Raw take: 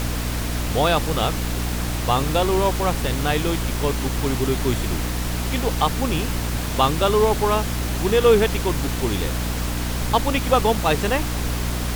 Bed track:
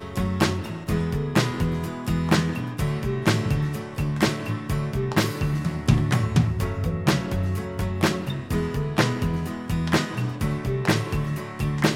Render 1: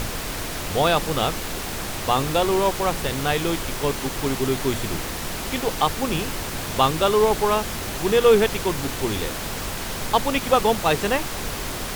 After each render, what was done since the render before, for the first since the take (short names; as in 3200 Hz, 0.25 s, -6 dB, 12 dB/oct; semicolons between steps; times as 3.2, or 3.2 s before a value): notches 60/120/180/240/300 Hz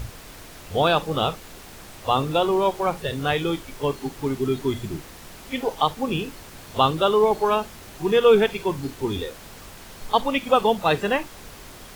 noise print and reduce 13 dB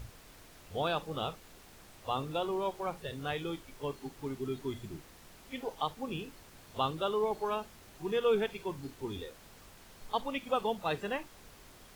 gain -13 dB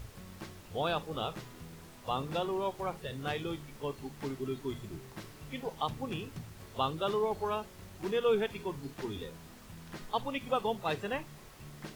add bed track -25 dB